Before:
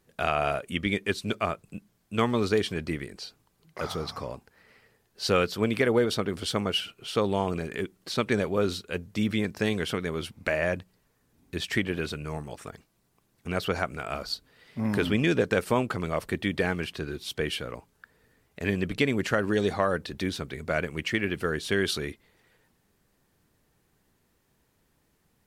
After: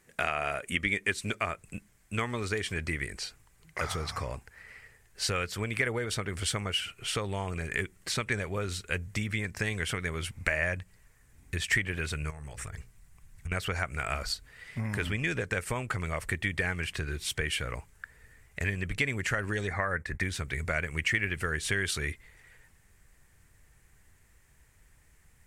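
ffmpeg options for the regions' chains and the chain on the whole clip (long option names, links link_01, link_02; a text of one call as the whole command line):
ffmpeg -i in.wav -filter_complex "[0:a]asettb=1/sr,asplit=3[link_01][link_02][link_03];[link_01]atrim=end=12.304[link_04];[link_02]atrim=start=12.3:end=13.52,asetpts=PTS-STARTPTS,afade=type=in:duration=0.004:curve=qsin,afade=type=out:start_time=1.216:duration=0.004:curve=qsin,bandreject=frequency=60:width_type=h:width=6,bandreject=frequency=120:width_type=h:width=6,bandreject=frequency=180:width_type=h:width=6,bandreject=frequency=240:width_type=h:width=6,bandreject=frequency=300:width_type=h:width=6,bandreject=frequency=360:width_type=h:width=6,bandreject=frequency=420:width_type=h:width=6,bandreject=frequency=480:width_type=h:width=6,bandreject=frequency=540:width_type=h:width=6,asubboost=boost=9.5:cutoff=180,acompressor=threshold=-41dB:ratio=16:attack=3.2:release=140:knee=1:detection=peak[link_05];[link_03]atrim=start=13.516[link_06];[link_04][link_05]acrossfade=duration=0.004:curve1=hsin:curve2=qsin[link_07];[link_07][link_06]acrossfade=duration=0.004:curve1=qsin:curve2=hsin,asettb=1/sr,asplit=3[link_08][link_09][link_10];[link_08]atrim=end=19.674[link_11];[link_09]atrim=start=19.67:end=20.23,asetpts=PTS-STARTPTS,afade=type=in:duration=0.004:curve=qsin,afade=type=out:start_time=0.556:duration=0.004:curve=qsin,agate=range=-33dB:threshold=-39dB:ratio=3:release=100:detection=peak,highshelf=frequency=2500:width_type=q:width=3:gain=-6.5[link_12];[link_10]atrim=start=20.226[link_13];[link_11][link_12]acrossfade=duration=0.004:curve1=hsin:curve2=qsin[link_14];[link_14][link_13]acrossfade=duration=0.004:curve1=qsin:curve2=hsin,asubboost=boost=6.5:cutoff=90,acompressor=threshold=-31dB:ratio=4,equalizer=frequency=2000:width_type=o:width=1:gain=11,equalizer=frequency=4000:width_type=o:width=1:gain=-4,equalizer=frequency=8000:width_type=o:width=1:gain=11" out.wav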